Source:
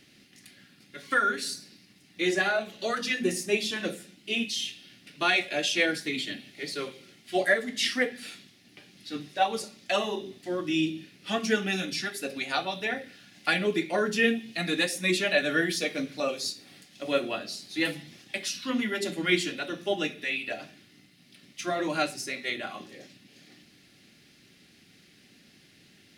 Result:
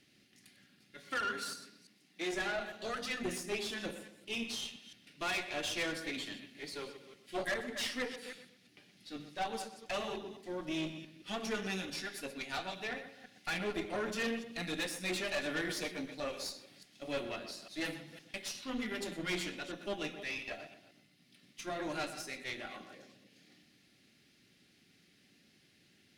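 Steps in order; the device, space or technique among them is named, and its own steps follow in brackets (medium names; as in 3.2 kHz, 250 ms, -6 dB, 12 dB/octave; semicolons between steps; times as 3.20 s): chunks repeated in reverse 170 ms, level -13 dB; rockabilly slapback (valve stage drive 25 dB, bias 0.7; tape echo 123 ms, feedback 33%, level -9.5 dB, low-pass 2.1 kHz); 1.05–2.31 s: high-pass 63 Hz -> 200 Hz 24 dB/octave; trim -5.5 dB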